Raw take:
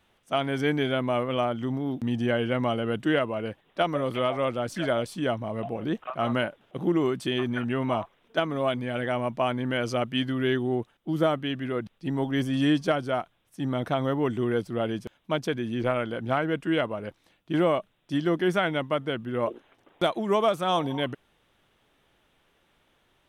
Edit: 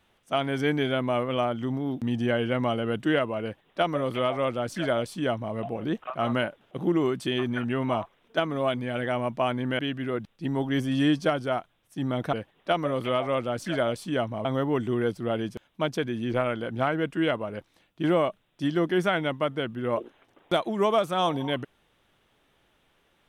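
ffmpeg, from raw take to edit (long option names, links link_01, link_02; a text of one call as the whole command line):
ffmpeg -i in.wav -filter_complex "[0:a]asplit=4[link_01][link_02][link_03][link_04];[link_01]atrim=end=9.792[link_05];[link_02]atrim=start=11.408:end=13.952[link_06];[link_03]atrim=start=3.428:end=5.552[link_07];[link_04]atrim=start=13.948[link_08];[link_05][link_06]acrossfade=duration=0.004:curve1=hsin:curve2=hsin[link_09];[link_09][link_07]acrossfade=duration=0.004:curve1=hsin:curve2=hsin[link_10];[link_10][link_08]acrossfade=duration=0.004:curve1=hsin:curve2=hsin" out.wav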